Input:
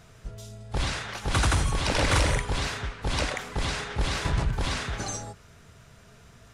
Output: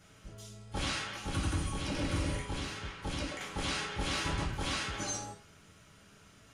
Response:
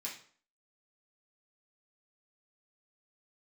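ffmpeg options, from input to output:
-filter_complex "[1:a]atrim=start_sample=2205,asetrate=57330,aresample=44100[link_01];[0:a][link_01]afir=irnorm=-1:irlink=0,asettb=1/sr,asplit=3[link_02][link_03][link_04];[link_02]atrim=end=1.094[link_05];[link_03]atrim=start=1.09:end=3.41,asetpts=PTS-STARTPTS,afade=type=in:duration=0.004:curve=qsin,afade=type=out:start_time=2.316:duration=0.004:curve=qsin,acrossover=split=370[link_06][link_07];[link_07]acompressor=threshold=-40dB:ratio=4[link_08];[link_06][link_08]amix=inputs=2:normalize=0[link_09];[link_04]atrim=start=3.406[link_10];[link_05][link_09]acrossfade=duration=0.004:curve1=hsin:curve2=qsin[link_11];[link_11][link_10]acrossfade=duration=0.004:curve1=qsin:curve2=hsin"

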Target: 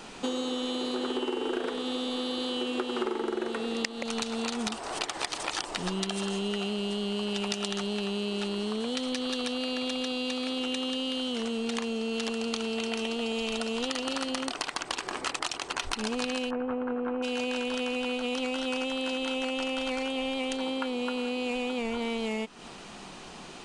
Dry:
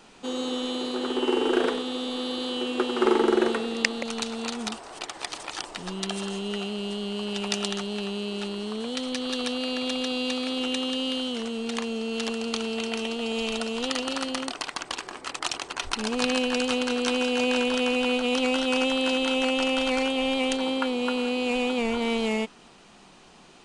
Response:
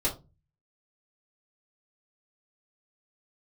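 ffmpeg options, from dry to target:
-filter_complex "[0:a]asplit=3[link_01][link_02][link_03];[link_01]afade=type=out:start_time=16.49:duration=0.02[link_04];[link_02]lowpass=frequency=1500:width=0.5412,lowpass=frequency=1500:width=1.3066,afade=type=in:start_time=16.49:duration=0.02,afade=type=out:start_time=17.22:duration=0.02[link_05];[link_03]afade=type=in:start_time=17.22:duration=0.02[link_06];[link_04][link_05][link_06]amix=inputs=3:normalize=0,acompressor=threshold=-35dB:ratio=12,volume=7.5dB"

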